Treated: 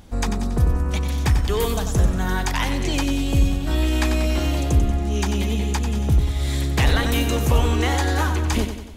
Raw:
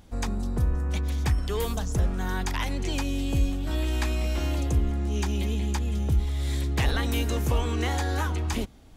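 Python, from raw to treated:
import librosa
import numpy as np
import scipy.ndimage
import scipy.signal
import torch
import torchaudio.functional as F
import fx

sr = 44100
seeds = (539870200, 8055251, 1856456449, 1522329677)

y = fx.echo_feedback(x, sr, ms=93, feedback_pct=51, wet_db=-8.5)
y = y * librosa.db_to_amplitude(6.5)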